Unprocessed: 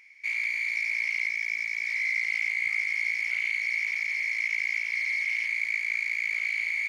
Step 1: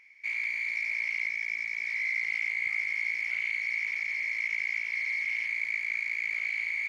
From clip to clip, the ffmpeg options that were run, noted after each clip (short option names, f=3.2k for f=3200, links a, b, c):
-af "highshelf=f=3.3k:g=-8.5"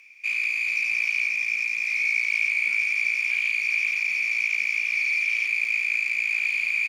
-filter_complex "[0:a]aemphasis=mode=production:type=cd,asplit=2[a][b];[b]adelay=396.5,volume=-6dB,highshelf=f=4k:g=-8.92[c];[a][c]amix=inputs=2:normalize=0,afreqshift=170,volume=5dB"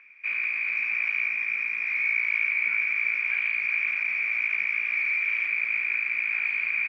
-af "lowpass=f=1.6k:t=q:w=3.6"